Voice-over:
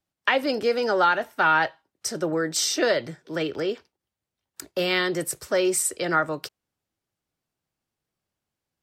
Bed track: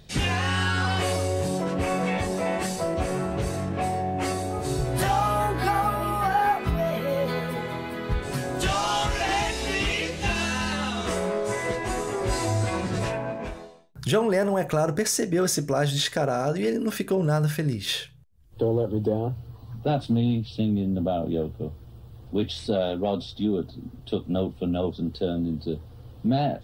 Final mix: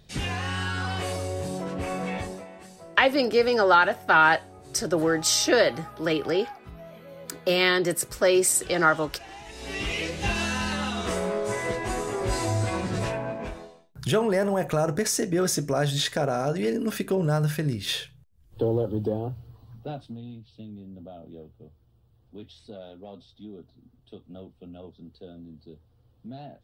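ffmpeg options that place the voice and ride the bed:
ffmpeg -i stem1.wav -i stem2.wav -filter_complex "[0:a]adelay=2700,volume=2dB[link_01];[1:a]volume=12.5dB,afade=type=out:start_time=2.2:duration=0.27:silence=0.211349,afade=type=in:start_time=9.44:duration=0.66:silence=0.133352,afade=type=out:start_time=18.78:duration=1.4:silence=0.149624[link_02];[link_01][link_02]amix=inputs=2:normalize=0" out.wav

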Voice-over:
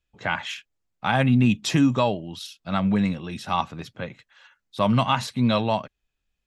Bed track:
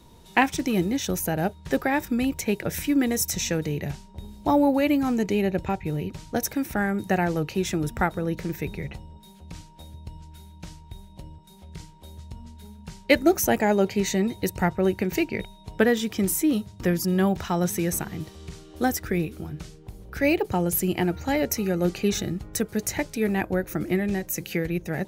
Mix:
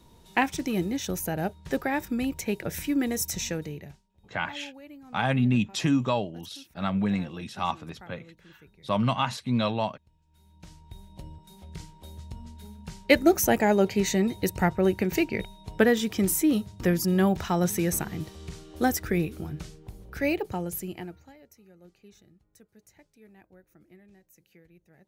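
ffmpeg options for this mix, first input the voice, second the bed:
ffmpeg -i stem1.wav -i stem2.wav -filter_complex "[0:a]adelay=4100,volume=-4.5dB[link_01];[1:a]volume=20.5dB,afade=type=out:start_time=3.43:duration=0.59:silence=0.0891251,afade=type=in:start_time=10.26:duration=1.02:silence=0.0595662,afade=type=out:start_time=19.59:duration=1.75:silence=0.0334965[link_02];[link_01][link_02]amix=inputs=2:normalize=0" out.wav

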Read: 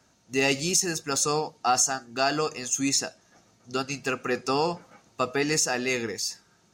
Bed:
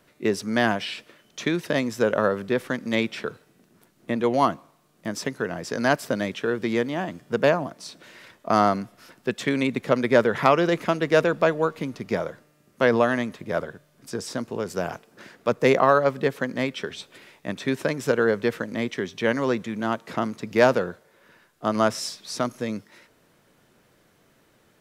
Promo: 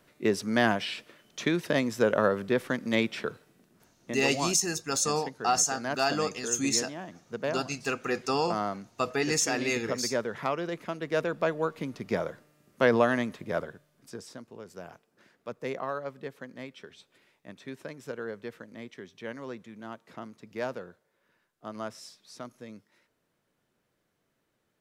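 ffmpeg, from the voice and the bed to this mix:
ffmpeg -i stem1.wav -i stem2.wav -filter_complex "[0:a]adelay=3800,volume=-2.5dB[link_01];[1:a]volume=6.5dB,afade=type=out:start_time=3.44:duration=0.83:silence=0.334965,afade=type=in:start_time=10.9:duration=1.4:silence=0.354813,afade=type=out:start_time=13.35:duration=1.06:silence=0.223872[link_02];[link_01][link_02]amix=inputs=2:normalize=0" out.wav

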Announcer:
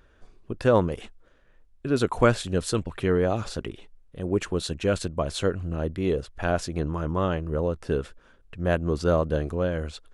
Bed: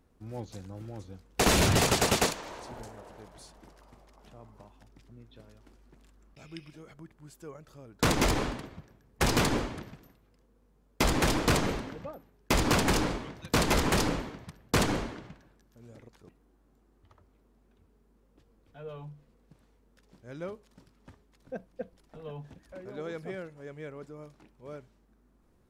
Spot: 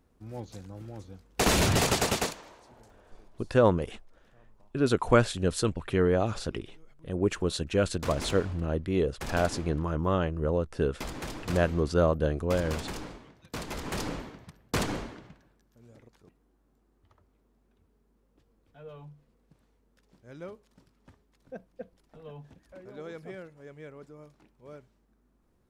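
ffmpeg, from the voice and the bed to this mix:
ffmpeg -i stem1.wav -i stem2.wav -filter_complex "[0:a]adelay=2900,volume=-1.5dB[link_01];[1:a]volume=8dB,afade=type=out:start_time=1.96:duration=0.63:silence=0.266073,afade=type=in:start_time=13.77:duration=0.46:silence=0.375837[link_02];[link_01][link_02]amix=inputs=2:normalize=0" out.wav

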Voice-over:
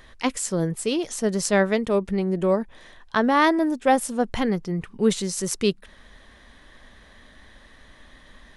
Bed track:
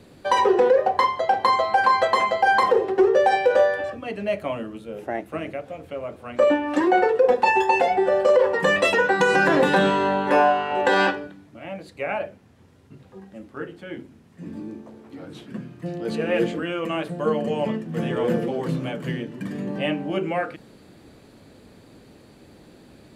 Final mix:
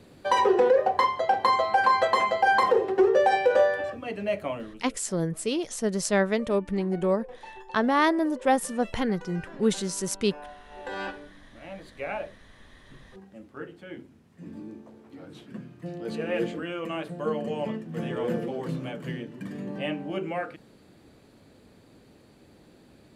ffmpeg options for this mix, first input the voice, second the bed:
ffmpeg -i stem1.wav -i stem2.wav -filter_complex "[0:a]adelay=4600,volume=-3.5dB[link_01];[1:a]volume=17.5dB,afade=type=out:start_time=4.44:duration=0.56:silence=0.0668344,afade=type=in:start_time=10.66:duration=1.2:silence=0.0944061[link_02];[link_01][link_02]amix=inputs=2:normalize=0" out.wav

